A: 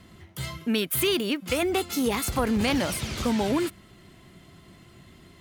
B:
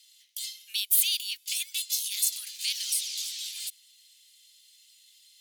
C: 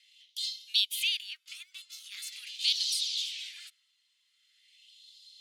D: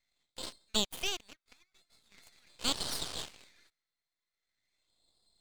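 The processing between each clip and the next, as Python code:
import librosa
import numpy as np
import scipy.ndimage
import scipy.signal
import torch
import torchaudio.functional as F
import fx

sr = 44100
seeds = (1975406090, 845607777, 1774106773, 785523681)

y1 = scipy.signal.sosfilt(scipy.signal.cheby2(4, 70, 810.0, 'highpass', fs=sr, output='sos'), x)
y1 = y1 * 10.0 ** (6.0 / 20.0)
y2 = fx.filter_lfo_bandpass(y1, sr, shape='sine', hz=0.43, low_hz=970.0, high_hz=4100.0, q=2.8)
y2 = y2 * 10.0 ** (6.5 / 20.0)
y3 = fx.wiener(y2, sr, points=15)
y3 = np.maximum(y3, 0.0)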